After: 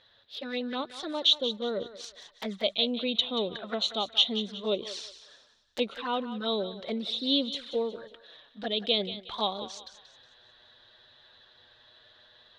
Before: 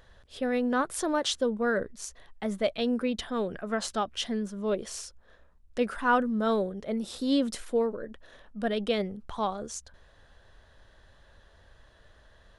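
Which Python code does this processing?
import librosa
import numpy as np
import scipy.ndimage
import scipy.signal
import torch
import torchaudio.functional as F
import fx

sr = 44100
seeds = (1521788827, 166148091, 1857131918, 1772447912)

p1 = fx.highpass(x, sr, hz=300.0, slope=6)
p2 = fx.rider(p1, sr, range_db=3, speed_s=0.5)
p3 = fx.lowpass_res(p2, sr, hz=3800.0, q=6.4)
p4 = fx.env_flanger(p3, sr, rest_ms=10.0, full_db=-27.0)
y = p4 + fx.echo_thinned(p4, sr, ms=182, feedback_pct=39, hz=620.0, wet_db=-11.5, dry=0)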